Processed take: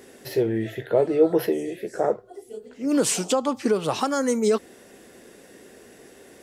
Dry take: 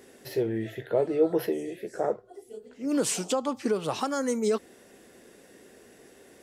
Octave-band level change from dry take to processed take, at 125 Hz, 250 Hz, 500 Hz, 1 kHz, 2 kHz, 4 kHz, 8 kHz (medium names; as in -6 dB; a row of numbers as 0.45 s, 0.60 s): +5.0 dB, +5.0 dB, +5.0 dB, +5.0 dB, +5.0 dB, +5.0 dB, +5.0 dB